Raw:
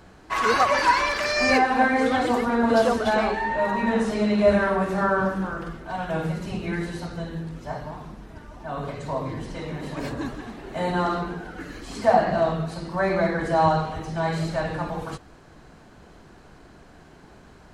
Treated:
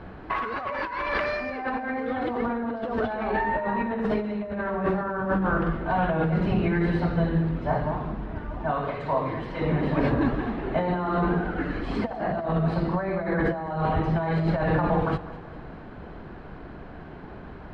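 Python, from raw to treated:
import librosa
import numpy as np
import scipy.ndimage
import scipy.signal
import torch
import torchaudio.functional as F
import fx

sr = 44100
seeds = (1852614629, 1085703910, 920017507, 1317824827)

y = fx.low_shelf(x, sr, hz=450.0, db=-11.0, at=(8.71, 9.61))
y = fx.over_compress(y, sr, threshold_db=-29.0, ratio=-1.0)
y = fx.air_absorb(y, sr, metres=420.0)
y = fx.echo_feedback(y, sr, ms=201, feedback_pct=51, wet_db=-16.5)
y = F.gain(torch.from_numpy(y), 4.0).numpy()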